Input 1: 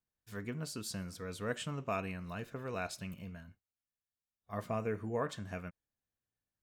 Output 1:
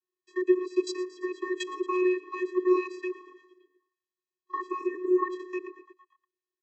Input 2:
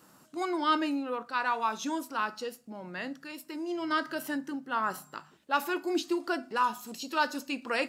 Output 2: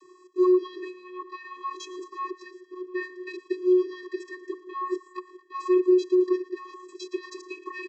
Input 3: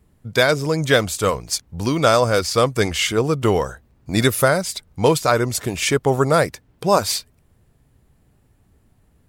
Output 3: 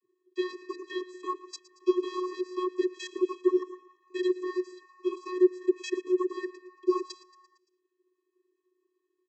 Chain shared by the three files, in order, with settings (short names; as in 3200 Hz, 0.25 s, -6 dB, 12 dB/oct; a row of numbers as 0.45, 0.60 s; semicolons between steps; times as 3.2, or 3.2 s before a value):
level quantiser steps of 21 dB; frequency-shifting echo 0.114 s, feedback 59%, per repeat +120 Hz, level -18 dB; vocoder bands 32, square 365 Hz; normalise peaks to -12 dBFS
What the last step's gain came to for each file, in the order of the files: +17.0, +17.0, -5.0 dB